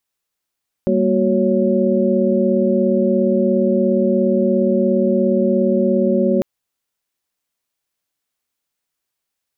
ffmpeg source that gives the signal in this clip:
-f lavfi -i "aevalsrc='0.119*(sin(2*PI*196*t)+sin(2*PI*233.08*t)+sin(2*PI*369.99*t)+sin(2*PI*554.37*t))':d=5.55:s=44100"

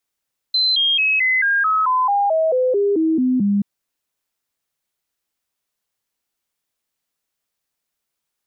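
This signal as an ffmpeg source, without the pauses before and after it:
-f lavfi -i "aevalsrc='0.2*clip(min(mod(t,0.22),0.22-mod(t,0.22))/0.005,0,1)*sin(2*PI*4070*pow(2,-floor(t/0.22)/3)*mod(t,0.22))':d=3.08:s=44100"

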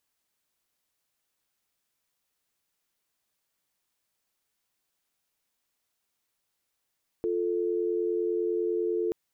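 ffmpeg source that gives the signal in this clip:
-f lavfi -i "aevalsrc='0.0398*(sin(2*PI*350*t)+sin(2*PI*440*t))':d=1.88:s=44100"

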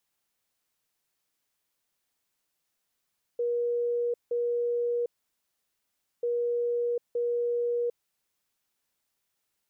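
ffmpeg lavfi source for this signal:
-f lavfi -i "aevalsrc='0.0562*sin(2*PI*478*t)*clip(min(mod(mod(t,2.84),0.92),0.75-mod(mod(t,2.84),0.92))/0.005,0,1)*lt(mod(t,2.84),1.84)':d=5.68:s=44100"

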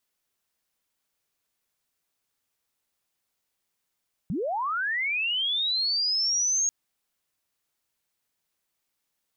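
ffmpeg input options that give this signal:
-f lavfi -i "aevalsrc='pow(10,(-26+4.5*t/2.39)/20)*sin(2*PI*(140*t+6460*t*t/(2*2.39)))':d=2.39:s=44100"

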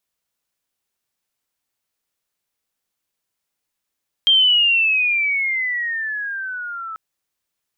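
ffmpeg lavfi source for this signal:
-f lavfi -i "aevalsrc='pow(10,(-10-17.5*t/2.69)/20)*sin(2*PI*3200*2.69/log(1300/3200)*(exp(log(1300/3200)*t/2.69)-1))':d=2.69:s=44100"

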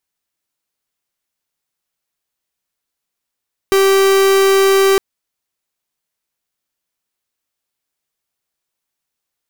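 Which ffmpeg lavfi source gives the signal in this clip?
-f lavfi -i "aevalsrc='0.282*(2*lt(mod(389*t,1),0.45)-1)':d=1.26:s=44100"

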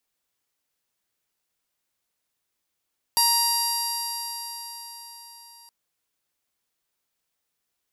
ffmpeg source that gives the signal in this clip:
-f lavfi -i "aevalsrc='0.075*pow(10,-3*t/4.75)*sin(2*PI*938.17*t)+0.0119*pow(10,-3*t/4.75)*sin(2*PI*1877.39*t)+0.0158*pow(10,-3*t/4.75)*sin(2*PI*2818.68*t)+0.0119*pow(10,-3*t/4.75)*sin(2*PI*3763.09*t)+0.0944*pow(10,-3*t/4.75)*sin(2*PI*4711.64*t)+0.0335*pow(10,-3*t/4.75)*sin(2*PI*5665.36*t)+0.0133*pow(10,-3*t/4.75)*sin(2*PI*6625.25*t)+0.0237*pow(10,-3*t/4.75)*sin(2*PI*7592.33*t)+0.0282*pow(10,-3*t/4.75)*sin(2*PI*8567.57*t)+0.00841*pow(10,-3*t/4.75)*sin(2*PI*9551.95*t)+0.0631*pow(10,-3*t/4.75)*sin(2*PI*10546.44*t)+0.0531*pow(10,-3*t/4.75)*sin(2*PI*11551.97*t)+0.0106*pow(10,-3*t/4.75)*sin(2*PI*12569.46*t)':d=2.52:s=44100"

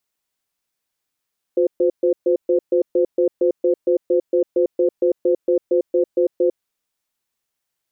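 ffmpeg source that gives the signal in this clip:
-f lavfi -i "aevalsrc='0.158*(sin(2*PI*358*t)+sin(2*PI*514*t))*clip(min(mod(t,0.23),0.1-mod(t,0.23))/0.005,0,1)':d=4.96:s=44100"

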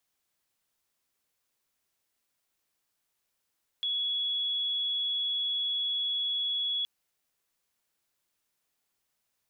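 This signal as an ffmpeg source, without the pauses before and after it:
-f lavfi -i "sine=f=3370:d=3.02:r=44100,volume=-9.44dB"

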